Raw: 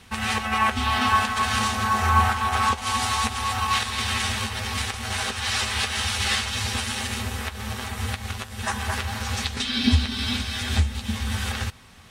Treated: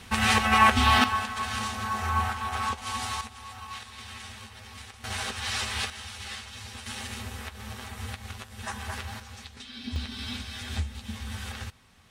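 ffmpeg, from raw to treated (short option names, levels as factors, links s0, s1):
-af "asetnsamples=n=441:p=0,asendcmd='1.04 volume volume -8dB;3.21 volume volume -17dB;5.04 volume volume -5.5dB;5.9 volume volume -15dB;6.86 volume volume -8.5dB;9.2 volume volume -17dB;9.96 volume volume -9.5dB',volume=1.41"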